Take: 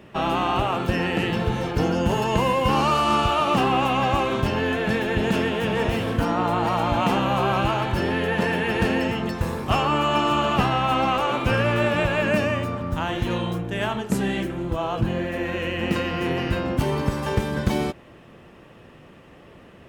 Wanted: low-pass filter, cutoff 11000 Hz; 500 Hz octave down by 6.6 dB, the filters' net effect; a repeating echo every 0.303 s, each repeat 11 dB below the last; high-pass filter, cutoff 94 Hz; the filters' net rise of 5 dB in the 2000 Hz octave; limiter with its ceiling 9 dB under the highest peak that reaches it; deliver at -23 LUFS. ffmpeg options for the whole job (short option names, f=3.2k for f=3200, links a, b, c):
-af "highpass=94,lowpass=11k,equalizer=f=500:t=o:g=-9,equalizer=f=2k:t=o:g=7,alimiter=limit=-16dB:level=0:latency=1,aecho=1:1:303|606|909:0.282|0.0789|0.0221,volume=2dB"